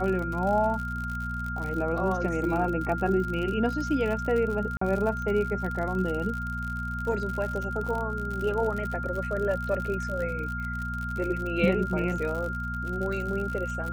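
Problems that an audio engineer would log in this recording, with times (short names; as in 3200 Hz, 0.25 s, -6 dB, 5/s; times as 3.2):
crackle 65/s -32 dBFS
hum 60 Hz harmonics 4 -34 dBFS
tone 1400 Hz -33 dBFS
4.77–4.81 gap 44 ms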